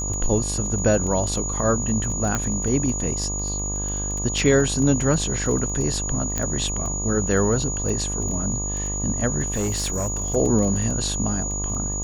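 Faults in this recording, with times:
mains buzz 50 Hz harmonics 24 −29 dBFS
surface crackle 10 per second −26 dBFS
whistle 6,800 Hz −27 dBFS
0:02.35: click −9 dBFS
0:06.38: click −9 dBFS
0:09.50–0:10.36: clipping −20 dBFS

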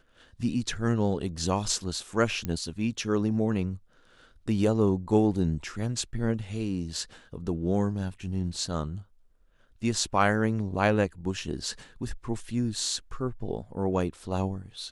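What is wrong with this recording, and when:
0:02.45: click −17 dBFS

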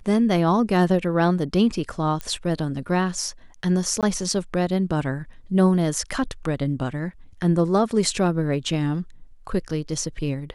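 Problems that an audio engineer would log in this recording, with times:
0:02.21: click −16 dBFS
0:04.01–0:04.03: drop-out 17 ms

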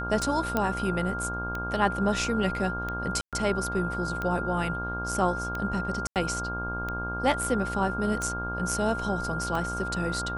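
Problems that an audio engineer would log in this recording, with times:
mains buzz 60 Hz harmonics 27 −35 dBFS
scratch tick 45 rpm
whistle 1,400 Hz −32 dBFS
0:00.57: click −12 dBFS
0:03.21–0:03.33: drop-out 117 ms
0:06.07–0:06.16: drop-out 88 ms

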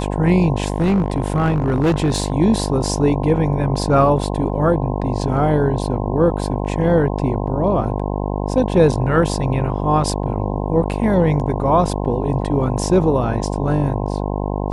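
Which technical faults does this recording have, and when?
mains buzz 50 Hz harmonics 21 −22 dBFS
0:00.66–0:02.32: clipping −12 dBFS

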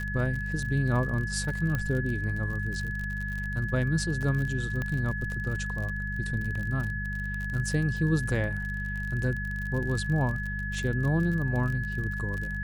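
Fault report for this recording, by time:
surface crackle 41 per second −33 dBFS
mains hum 50 Hz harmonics 4 −34 dBFS
whistle 1,700 Hz −34 dBFS
0:01.75: click −17 dBFS
0:04.82: click −20 dBFS

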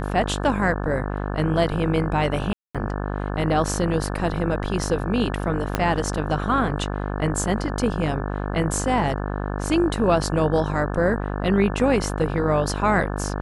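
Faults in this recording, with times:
mains buzz 50 Hz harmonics 35 −27 dBFS
0:02.53–0:02.75: drop-out 216 ms
0:05.75: click −6 dBFS

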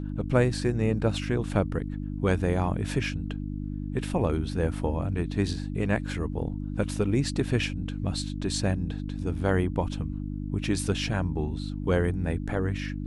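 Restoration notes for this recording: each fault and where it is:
mains hum 50 Hz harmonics 6 −33 dBFS

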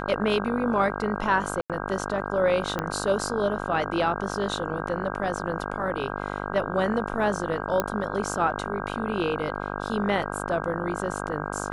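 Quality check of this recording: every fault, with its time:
mains buzz 50 Hz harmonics 32 −32 dBFS
0:01.61–0:01.70: drop-out 87 ms
0:02.79: click −13 dBFS
0:07.80: click −9 dBFS

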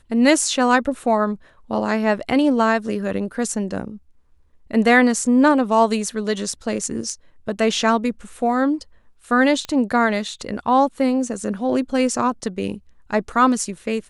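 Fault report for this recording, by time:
0:09.65: click −15 dBFS

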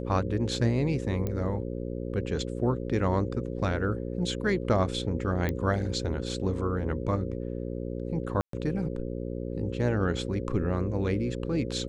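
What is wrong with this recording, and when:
mains buzz 60 Hz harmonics 9 −34 dBFS
0:01.27: click −19 dBFS
0:05.49: click −16 dBFS
0:08.41–0:08.53: drop-out 123 ms

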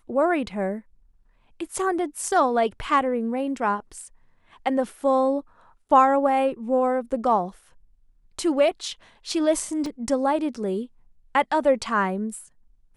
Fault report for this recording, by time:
0:09.86: drop-out 2.9 ms

